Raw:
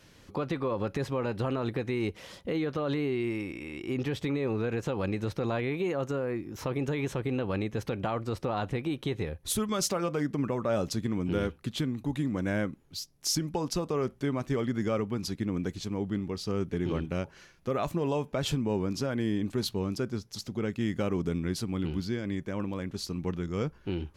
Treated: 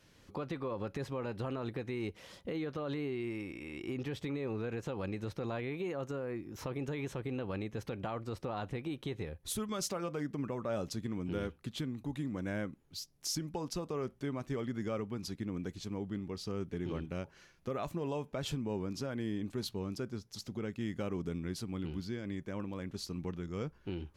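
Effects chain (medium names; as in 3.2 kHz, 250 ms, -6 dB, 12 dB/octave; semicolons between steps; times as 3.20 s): recorder AGC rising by 6.6 dB/s; trim -7.5 dB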